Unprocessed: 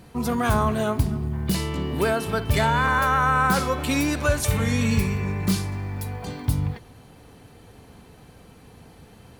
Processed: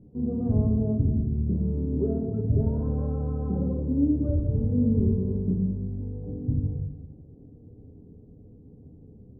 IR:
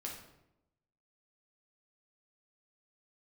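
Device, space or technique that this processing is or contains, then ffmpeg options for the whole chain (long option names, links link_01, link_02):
next room: -filter_complex "[0:a]asettb=1/sr,asplit=3[link_01][link_02][link_03];[link_01]atrim=end=4.724[link_04];[link_02]atrim=start=4.72:end=5.35,asetpts=PTS-STARTPTS,afade=type=in:duration=0.004:curve=qsin,afade=type=out:start_time=0.626:duration=0.004:curve=qsin,equalizer=frequency=900:width=0.38:gain=4[link_05];[link_03]atrim=start=5.346[link_06];[link_04][link_05]acrossfade=duration=0.004:curve1=hsin:curve2=qsin[link_07];[link_07][link_06]acrossfade=duration=0.004:curve1=qsin:curve2=hsin,lowpass=frequency=430:width=0.5412,lowpass=frequency=430:width=1.3066[link_08];[1:a]atrim=start_sample=2205[link_09];[link_08][link_09]afir=irnorm=-1:irlink=0"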